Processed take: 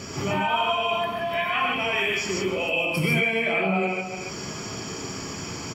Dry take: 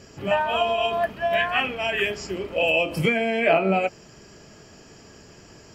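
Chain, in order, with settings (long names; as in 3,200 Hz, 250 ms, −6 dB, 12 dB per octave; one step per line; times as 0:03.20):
high-pass filter 170 Hz 6 dB per octave
on a send: single-tap delay 283 ms −18 dB
on the sum: downward compressor 2.5 to 1, threshold −42 dBFS, peak gain reduction 17.5 dB
in parallel at 0 dB: brickwall limiter −31 dBFS, peak gain reduction 7 dB
on the sum: comb filter 0.9 ms, depth 40%
reverb whose tail is shaped and stops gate 170 ms rising, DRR −1 dB
level +5.5 dB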